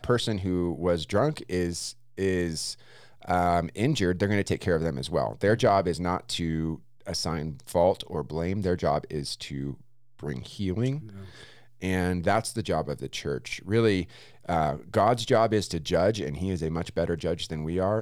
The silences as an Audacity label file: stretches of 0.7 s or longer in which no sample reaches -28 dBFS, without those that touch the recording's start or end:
10.960000	11.830000	silence